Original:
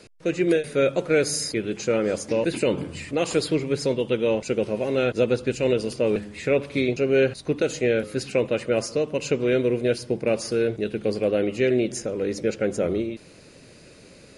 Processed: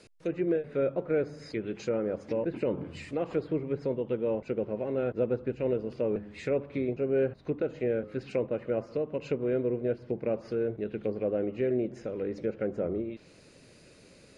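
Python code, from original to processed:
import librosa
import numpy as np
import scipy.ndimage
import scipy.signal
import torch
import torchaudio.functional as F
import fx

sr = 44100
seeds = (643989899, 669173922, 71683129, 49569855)

y = fx.env_lowpass_down(x, sr, base_hz=1200.0, full_db=-20.5)
y = y * 10.0 ** (-7.0 / 20.0)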